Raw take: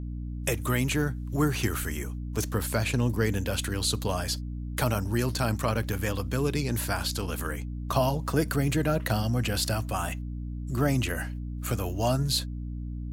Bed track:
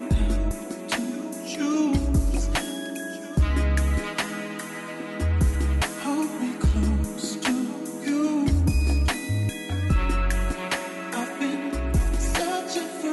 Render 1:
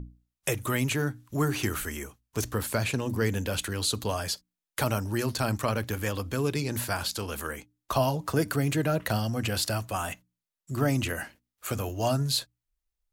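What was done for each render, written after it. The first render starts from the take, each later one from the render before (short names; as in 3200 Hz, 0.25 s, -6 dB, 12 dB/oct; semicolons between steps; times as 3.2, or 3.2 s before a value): notches 60/120/180/240/300 Hz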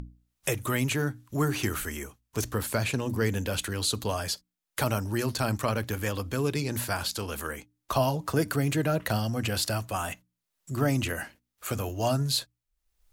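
upward compressor, threshold -43 dBFS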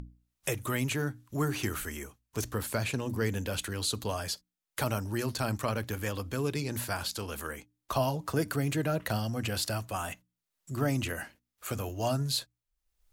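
gain -3.5 dB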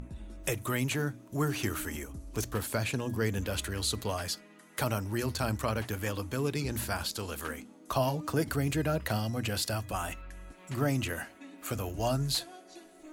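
add bed track -22.5 dB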